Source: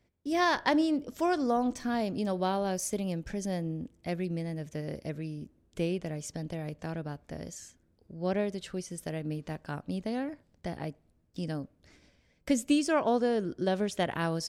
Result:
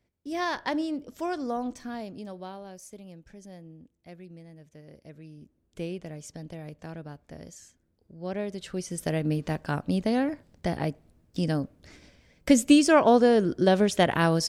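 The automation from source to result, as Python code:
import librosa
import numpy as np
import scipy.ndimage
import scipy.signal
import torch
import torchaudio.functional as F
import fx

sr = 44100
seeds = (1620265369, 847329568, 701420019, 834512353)

y = fx.gain(x, sr, db=fx.line((1.65, -3.0), (2.73, -13.0), (4.87, -13.0), (5.8, -3.5), (8.29, -3.5), (9.09, 8.0)))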